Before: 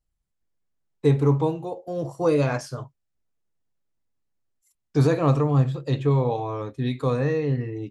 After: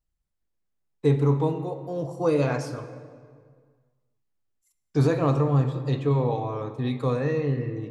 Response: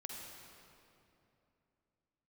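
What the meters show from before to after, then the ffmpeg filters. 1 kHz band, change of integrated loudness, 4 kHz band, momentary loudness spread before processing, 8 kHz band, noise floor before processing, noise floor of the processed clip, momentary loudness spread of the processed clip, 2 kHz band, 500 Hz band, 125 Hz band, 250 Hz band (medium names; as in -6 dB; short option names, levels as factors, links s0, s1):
-1.5 dB, -1.5 dB, -2.5 dB, 11 LU, no reading, -78 dBFS, -78 dBFS, 10 LU, -2.0 dB, -1.5 dB, -1.5 dB, -1.5 dB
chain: -filter_complex "[0:a]asplit=2[s0][s1];[1:a]atrim=start_sample=2205,asetrate=70560,aresample=44100,highshelf=f=6100:g=-7.5[s2];[s1][s2]afir=irnorm=-1:irlink=0,volume=1.33[s3];[s0][s3]amix=inputs=2:normalize=0,volume=0.562"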